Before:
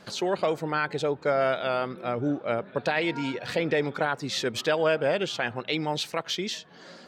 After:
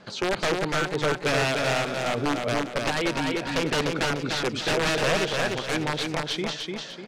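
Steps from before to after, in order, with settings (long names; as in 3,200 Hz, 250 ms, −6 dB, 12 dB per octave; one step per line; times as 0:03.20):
wrap-around overflow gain 19 dB
high-frequency loss of the air 75 metres
repeating echo 298 ms, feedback 39%, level −3.5 dB
level +1.5 dB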